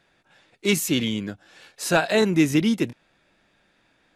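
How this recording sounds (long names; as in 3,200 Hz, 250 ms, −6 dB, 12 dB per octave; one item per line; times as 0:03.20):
background noise floor −65 dBFS
spectral slope −4.5 dB per octave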